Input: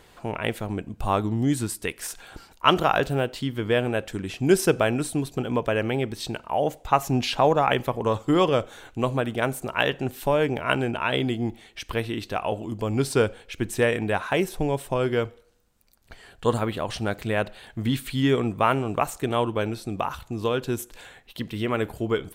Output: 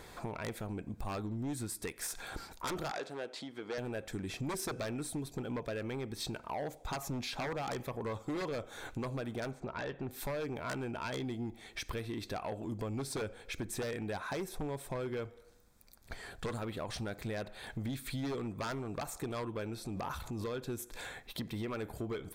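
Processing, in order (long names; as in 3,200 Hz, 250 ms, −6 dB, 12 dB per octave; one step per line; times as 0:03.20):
wave folding −17 dBFS
downward compressor 6 to 1, threshold −36 dBFS, peak gain reduction 14.5 dB
notch filter 2,900 Hz, Q 5.3
soft clipping −32.5 dBFS, distortion −16 dB
0:02.91–0:03.78: band-pass filter 330–7,200 Hz
0:09.51–0:10.11: high-frequency loss of the air 180 metres
0:19.78–0:20.48: transient designer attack −2 dB, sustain +8 dB
level +2 dB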